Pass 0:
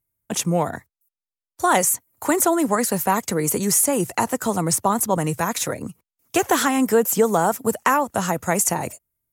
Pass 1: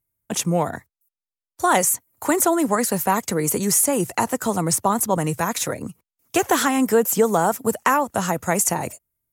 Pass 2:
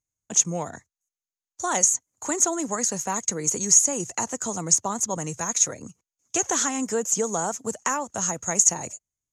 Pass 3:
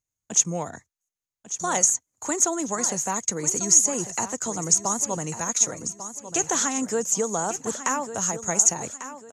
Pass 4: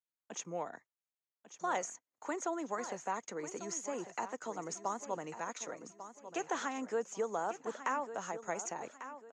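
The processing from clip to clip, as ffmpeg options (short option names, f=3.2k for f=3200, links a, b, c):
-af anull
-af "lowpass=f=6.6k:t=q:w=11,volume=-9dB"
-af "aecho=1:1:1146|2292|3438:0.251|0.0854|0.029"
-af "highpass=330,lowpass=2.6k,volume=-7.5dB"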